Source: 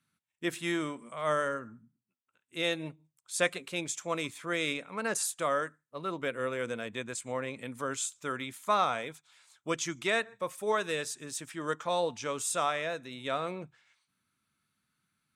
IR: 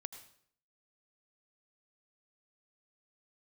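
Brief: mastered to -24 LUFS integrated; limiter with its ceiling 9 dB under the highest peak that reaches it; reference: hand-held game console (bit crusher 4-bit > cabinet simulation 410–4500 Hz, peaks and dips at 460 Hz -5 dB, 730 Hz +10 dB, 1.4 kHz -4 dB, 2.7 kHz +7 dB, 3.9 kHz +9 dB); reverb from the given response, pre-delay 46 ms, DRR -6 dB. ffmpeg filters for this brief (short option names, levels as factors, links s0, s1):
-filter_complex "[0:a]alimiter=limit=0.0891:level=0:latency=1,asplit=2[s0][s1];[1:a]atrim=start_sample=2205,adelay=46[s2];[s1][s2]afir=irnorm=-1:irlink=0,volume=2.99[s3];[s0][s3]amix=inputs=2:normalize=0,acrusher=bits=3:mix=0:aa=0.000001,highpass=410,equalizer=f=460:t=q:w=4:g=-5,equalizer=f=730:t=q:w=4:g=10,equalizer=f=1400:t=q:w=4:g=-4,equalizer=f=2700:t=q:w=4:g=7,equalizer=f=3900:t=q:w=4:g=9,lowpass=f=4500:w=0.5412,lowpass=f=4500:w=1.3066,volume=1.12"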